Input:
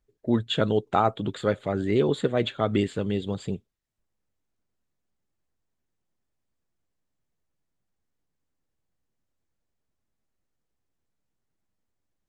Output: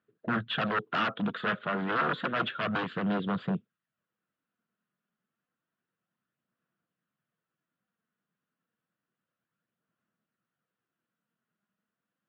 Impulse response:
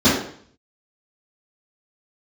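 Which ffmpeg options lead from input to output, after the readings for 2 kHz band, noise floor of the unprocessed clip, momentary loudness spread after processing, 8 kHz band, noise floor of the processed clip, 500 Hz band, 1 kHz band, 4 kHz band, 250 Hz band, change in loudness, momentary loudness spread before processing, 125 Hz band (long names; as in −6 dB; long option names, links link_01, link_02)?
+6.5 dB, −80 dBFS, 4 LU, below −15 dB, below −85 dBFS, −10.5 dB, −2.0 dB, −3.5 dB, −5.5 dB, −4.5 dB, 7 LU, −8.0 dB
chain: -af "aeval=exprs='0.0596*(abs(mod(val(0)/0.0596+3,4)-2)-1)':channel_layout=same,highpass=frequency=160:width=0.5412,highpass=frequency=160:width=1.3066,equalizer=frequency=280:width_type=q:width=4:gain=-7,equalizer=frequency=400:width_type=q:width=4:gain=-9,equalizer=frequency=580:width_type=q:width=4:gain=-5,equalizer=frequency=840:width_type=q:width=4:gain=-10,equalizer=frequency=1400:width_type=q:width=4:gain=6,equalizer=frequency=2200:width_type=q:width=4:gain=-7,lowpass=frequency=2900:width=0.5412,lowpass=frequency=2900:width=1.3066,aphaser=in_gain=1:out_gain=1:delay=4.9:decay=0.28:speed=0.3:type=sinusoidal,volume=4.5dB"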